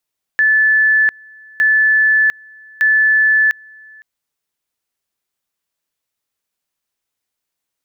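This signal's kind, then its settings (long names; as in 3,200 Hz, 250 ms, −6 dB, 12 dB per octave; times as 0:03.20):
tone at two levels in turn 1,740 Hz −9 dBFS, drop 28.5 dB, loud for 0.70 s, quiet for 0.51 s, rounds 3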